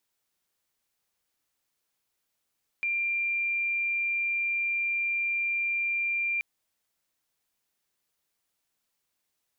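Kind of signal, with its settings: tone sine 2.38 kHz -25.5 dBFS 3.58 s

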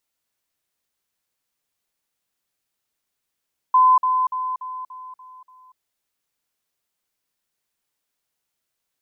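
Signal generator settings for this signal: level ladder 1.02 kHz -10.5 dBFS, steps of -6 dB, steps 7, 0.24 s 0.05 s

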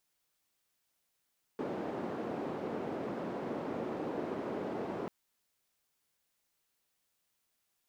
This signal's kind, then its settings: noise band 260–410 Hz, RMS -38 dBFS 3.49 s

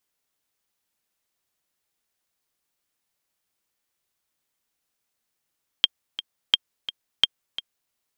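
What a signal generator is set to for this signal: metronome 172 bpm, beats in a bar 2, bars 3, 3.2 kHz, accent 14 dB -2.5 dBFS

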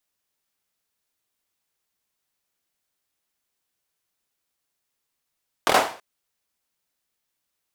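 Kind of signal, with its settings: hand clap length 0.33 s, apart 24 ms, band 730 Hz, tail 0.42 s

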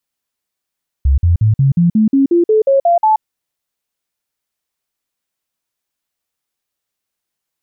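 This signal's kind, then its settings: stepped sine 68.3 Hz up, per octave 3, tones 12, 0.13 s, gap 0.05 s -7.5 dBFS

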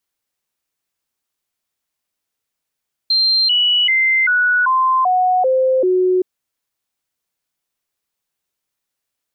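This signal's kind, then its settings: stepped sine 4.16 kHz down, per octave 2, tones 8, 0.39 s, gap 0.00 s -11.5 dBFS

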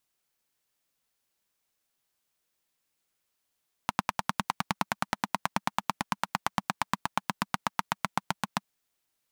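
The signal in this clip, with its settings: single-cylinder engine model, changing speed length 4.73 s, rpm 1200, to 900, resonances 200/920 Hz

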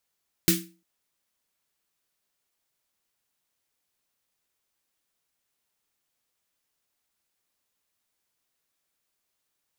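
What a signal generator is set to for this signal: snare drum length 0.35 s, tones 180 Hz, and 330 Hz, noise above 1.7 kHz, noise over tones 2 dB, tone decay 0.36 s, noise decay 0.28 s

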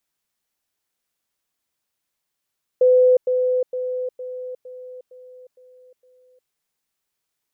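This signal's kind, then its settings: level ladder 505 Hz -10.5 dBFS, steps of -6 dB, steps 8, 0.36 s 0.10 s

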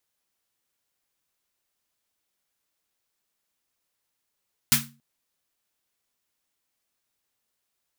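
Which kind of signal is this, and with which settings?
snare drum length 0.28 s, tones 140 Hz, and 230 Hz, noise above 1.1 kHz, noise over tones 11 dB, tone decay 0.40 s, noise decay 0.24 s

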